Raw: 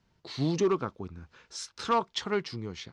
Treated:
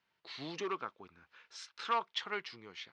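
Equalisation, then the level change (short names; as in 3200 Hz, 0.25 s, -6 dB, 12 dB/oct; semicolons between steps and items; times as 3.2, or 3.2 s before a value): band-pass 2700 Hz, Q 1; high shelf 2800 Hz -10 dB; +3.5 dB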